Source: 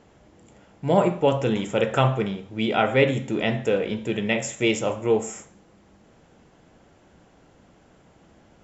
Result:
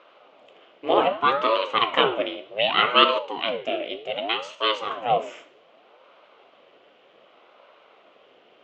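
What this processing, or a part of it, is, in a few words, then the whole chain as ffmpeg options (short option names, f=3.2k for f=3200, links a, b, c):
voice changer toy: -filter_complex "[0:a]asettb=1/sr,asplit=3[a][b][c];[a]atrim=end=3.194[d];[b]atrim=start=3.19:end=4.91,asetpts=PTS-STARTPTS,afade=t=in:d=0.004:c=qsin,afade=t=out:st=1.716:d=0.004:c=qsin,equalizer=f=1k:w=0.33:g=-8[e];[c]atrim=start=4.906[f];[d][e]acrossfade=d=0.004:c1=hsin:c2=qsin[g];[g][f]acrossfade=d=0.004:c1=qsin:c2=hsin,aeval=exprs='val(0)*sin(2*PI*460*n/s+460*0.7/0.65*sin(2*PI*0.65*n/s))':c=same,highpass=550,equalizer=f=550:t=q:w=4:g=3,equalizer=f=900:t=q:w=4:g=-9,equalizer=f=1.7k:t=q:w=4:g=-7,equalizer=f=3k:t=q:w=4:g=7,lowpass=f=3.7k:w=0.5412,lowpass=f=3.7k:w=1.3066,volume=8dB"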